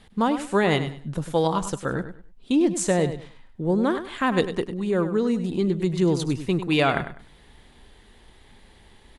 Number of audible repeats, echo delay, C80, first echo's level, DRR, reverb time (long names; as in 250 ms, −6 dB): 2, 100 ms, no reverb audible, −11.0 dB, no reverb audible, no reverb audible